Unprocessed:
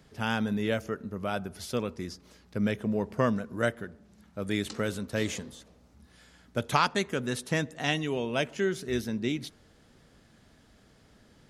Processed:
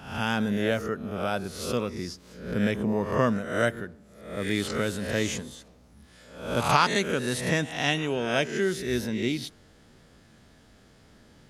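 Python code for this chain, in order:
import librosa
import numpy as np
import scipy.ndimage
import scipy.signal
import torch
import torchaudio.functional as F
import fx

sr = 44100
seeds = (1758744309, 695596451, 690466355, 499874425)

y = fx.spec_swells(x, sr, rise_s=0.63)
y = y * librosa.db_to_amplitude(1.5)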